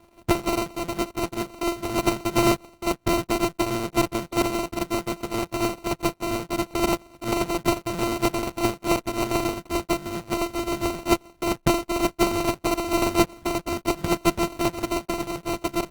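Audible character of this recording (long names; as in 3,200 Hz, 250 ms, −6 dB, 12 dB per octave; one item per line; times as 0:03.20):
a buzz of ramps at a fixed pitch in blocks of 128 samples
tremolo triangle 7.3 Hz, depth 60%
aliases and images of a low sample rate 1,700 Hz, jitter 0%
Opus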